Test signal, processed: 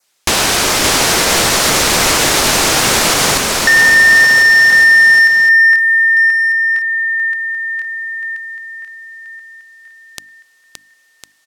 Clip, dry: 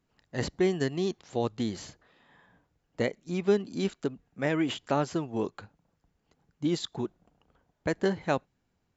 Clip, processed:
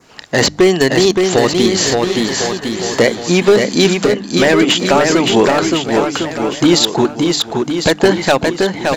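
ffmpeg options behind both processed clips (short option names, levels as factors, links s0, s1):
-filter_complex "[0:a]lowpass=5800,aemphasis=mode=production:type=bsi,bandreject=f=50:t=h:w=6,bandreject=f=100:t=h:w=6,bandreject=f=150:t=h:w=6,bandreject=f=200:t=h:w=6,bandreject=f=250:t=h:w=6,bandreject=f=300:t=h:w=6,adynamicequalizer=threshold=0.00631:dfrequency=3200:dqfactor=1.8:tfrequency=3200:tqfactor=1.8:attack=5:release=100:ratio=0.375:range=3:mode=cutabove:tftype=bell,acompressor=threshold=0.00398:ratio=2,asoftclip=type=hard:threshold=0.0158,asplit=2[s0][s1];[s1]aecho=0:1:570|1054|1466|1816|2114:0.631|0.398|0.251|0.158|0.1[s2];[s0][s2]amix=inputs=2:normalize=0,alimiter=level_in=44.7:limit=0.891:release=50:level=0:latency=1,volume=0.891"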